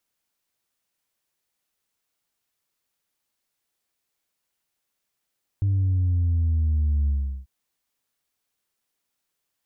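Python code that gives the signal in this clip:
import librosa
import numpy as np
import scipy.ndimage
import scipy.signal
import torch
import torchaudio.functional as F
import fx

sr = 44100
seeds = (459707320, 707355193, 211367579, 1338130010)

y = fx.sub_drop(sr, level_db=-19, start_hz=100.0, length_s=1.84, drive_db=1.0, fade_s=0.38, end_hz=65.0)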